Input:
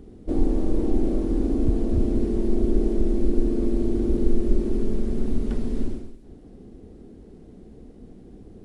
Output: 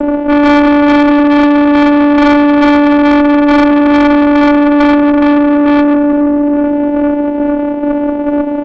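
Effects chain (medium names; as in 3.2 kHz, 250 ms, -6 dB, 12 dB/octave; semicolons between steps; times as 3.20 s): square tremolo 2.3 Hz, depth 60%, duty 35%; frequency-shifting echo 176 ms, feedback 42%, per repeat -60 Hz, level -6.5 dB; in parallel at 0 dB: compression 12:1, threshold -29 dBFS, peak gain reduction 16.5 dB; on the sum: distance through air 76 m; crossover distortion -48 dBFS; high-order bell 550 Hz +12.5 dB 1.2 oct; on a send at -2.5 dB: reverberation RT60 2.6 s, pre-delay 3 ms; on the sum: vocoder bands 4, saw 291 Hz; valve stage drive 31 dB, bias 0.45; loudness maximiser +33 dB; trim -3.5 dB; G.722 64 kbps 16 kHz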